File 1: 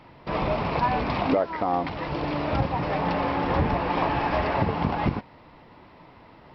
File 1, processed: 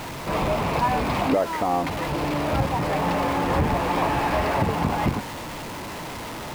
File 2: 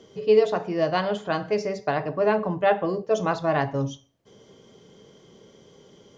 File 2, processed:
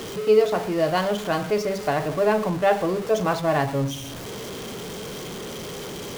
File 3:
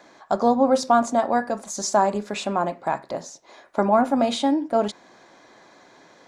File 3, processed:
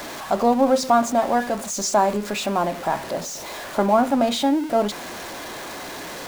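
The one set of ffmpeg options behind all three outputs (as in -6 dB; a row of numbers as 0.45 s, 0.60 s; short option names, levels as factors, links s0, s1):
-af "aeval=exprs='val(0)+0.5*0.0355*sgn(val(0))':c=same"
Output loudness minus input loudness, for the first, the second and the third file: +1.5 LU, 0.0 LU, +1.0 LU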